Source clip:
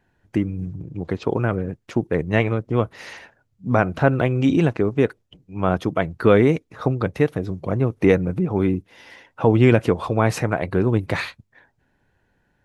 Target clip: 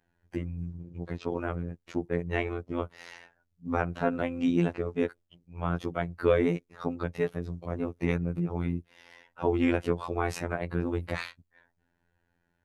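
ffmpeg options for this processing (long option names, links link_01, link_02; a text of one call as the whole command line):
ffmpeg -i in.wav -af "afftfilt=real='hypot(re,im)*cos(PI*b)':imag='0':win_size=2048:overlap=0.75,volume=-6dB" out.wav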